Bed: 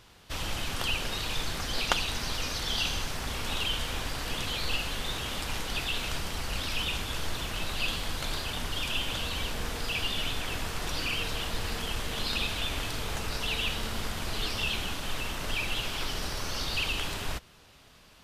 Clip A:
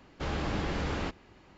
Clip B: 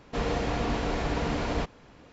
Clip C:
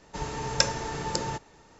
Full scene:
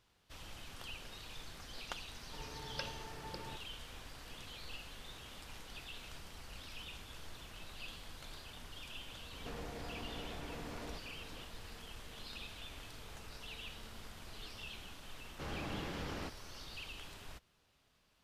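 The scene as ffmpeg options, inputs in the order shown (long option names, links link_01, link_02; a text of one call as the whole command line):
ffmpeg -i bed.wav -i cue0.wav -i cue1.wav -i cue2.wav -filter_complex "[0:a]volume=-17.5dB[link_01];[3:a]aresample=11025,aresample=44100[link_02];[2:a]acompressor=threshold=-41dB:ratio=6:attack=3.2:release=140:knee=1:detection=peak[link_03];[1:a]highpass=69[link_04];[link_02]atrim=end=1.79,asetpts=PTS-STARTPTS,volume=-16.5dB,afade=type=in:duration=0.004:curve=hsin,afade=type=out:start_time=1.786:duration=0.004:curve=hsin,adelay=2190[link_05];[link_03]atrim=end=2.12,asetpts=PTS-STARTPTS,volume=-3dB,afade=type=in:duration=0.004:curve=hsin,afade=type=out:start_time=2.116:duration=0.004:curve=hsin,adelay=9330[link_06];[link_04]atrim=end=1.57,asetpts=PTS-STARTPTS,volume=-9.5dB,afade=type=in:duration=0.004:curve=hsin,afade=type=out:start_time=1.566:duration=0.004:curve=hsin,adelay=15190[link_07];[link_01][link_05][link_06][link_07]amix=inputs=4:normalize=0" out.wav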